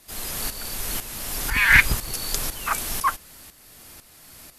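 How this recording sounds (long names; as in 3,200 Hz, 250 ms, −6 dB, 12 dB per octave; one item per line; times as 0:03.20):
tremolo saw up 2 Hz, depth 70%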